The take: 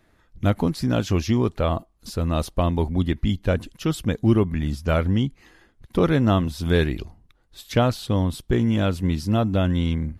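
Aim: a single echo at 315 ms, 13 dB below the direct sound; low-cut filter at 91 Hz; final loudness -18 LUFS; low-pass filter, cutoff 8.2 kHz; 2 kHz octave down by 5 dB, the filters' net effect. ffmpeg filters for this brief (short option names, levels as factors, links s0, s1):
-af "highpass=91,lowpass=8200,equalizer=f=2000:t=o:g=-7,aecho=1:1:315:0.224,volume=2"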